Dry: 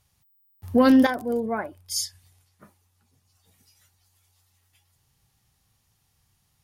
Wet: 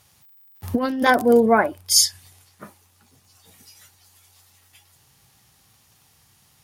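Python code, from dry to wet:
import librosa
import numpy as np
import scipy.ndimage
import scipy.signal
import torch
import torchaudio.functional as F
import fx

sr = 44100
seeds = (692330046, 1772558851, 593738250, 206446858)

y = fx.highpass(x, sr, hz=180.0, slope=6)
y = fx.over_compress(y, sr, threshold_db=-23.0, ratio=-0.5)
y = fx.dmg_crackle(y, sr, seeds[0], per_s=140.0, level_db=-58.0)
y = F.gain(torch.from_numpy(y), 8.5).numpy()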